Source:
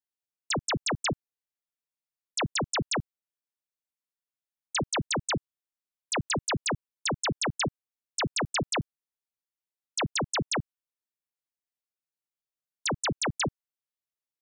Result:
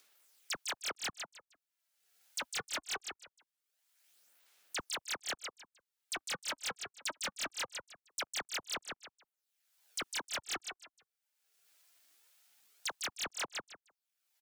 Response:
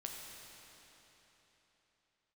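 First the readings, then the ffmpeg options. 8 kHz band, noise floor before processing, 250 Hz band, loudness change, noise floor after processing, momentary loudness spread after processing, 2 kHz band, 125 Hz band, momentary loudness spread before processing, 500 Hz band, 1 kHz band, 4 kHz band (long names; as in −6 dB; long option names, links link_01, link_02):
−7.0 dB, below −85 dBFS, −21.5 dB, −9.0 dB, below −85 dBFS, 9 LU, −7.5 dB, −27.5 dB, 5 LU, −15.0 dB, −11.0 dB, −7.0 dB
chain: -af "highpass=frequency=900:width=0.5412,highpass=frequency=900:width=1.3066,bandreject=frequency=1500:width=9.8,afwtdn=0.00501,alimiter=level_in=2.5dB:limit=-24dB:level=0:latency=1:release=252,volume=-2.5dB,acompressor=mode=upward:threshold=-37dB:ratio=2.5,aecho=1:1:154|308|462:0.355|0.0745|0.0156,aphaser=in_gain=1:out_gain=1:delay=3.3:decay=0.47:speed=0.22:type=sinusoidal,asoftclip=type=tanh:threshold=-31.5dB,aeval=exprs='val(0)*sin(2*PI*420*n/s+420*0.2/1.9*sin(2*PI*1.9*n/s))':channel_layout=same,volume=2dB"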